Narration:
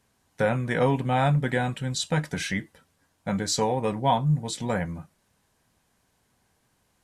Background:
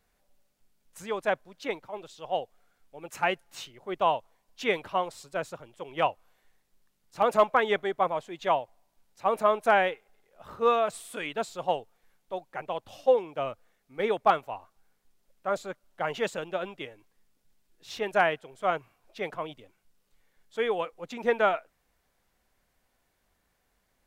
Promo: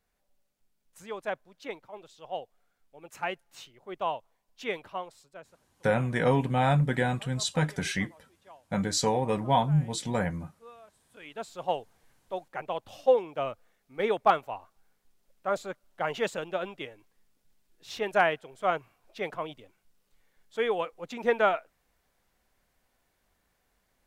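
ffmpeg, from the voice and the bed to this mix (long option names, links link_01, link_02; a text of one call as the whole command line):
ffmpeg -i stem1.wav -i stem2.wav -filter_complex "[0:a]adelay=5450,volume=-1.5dB[link_01];[1:a]volume=21dB,afade=type=out:start_time=4.78:duration=0.84:silence=0.0891251,afade=type=in:start_time=11.08:duration=0.77:silence=0.0446684[link_02];[link_01][link_02]amix=inputs=2:normalize=0" out.wav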